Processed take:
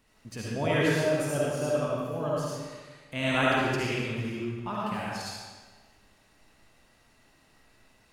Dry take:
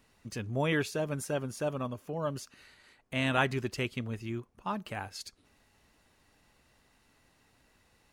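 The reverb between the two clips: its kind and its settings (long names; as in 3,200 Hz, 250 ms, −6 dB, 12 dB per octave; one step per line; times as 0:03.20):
comb and all-pass reverb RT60 1.4 s, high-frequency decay 0.9×, pre-delay 30 ms, DRR −6 dB
level −2 dB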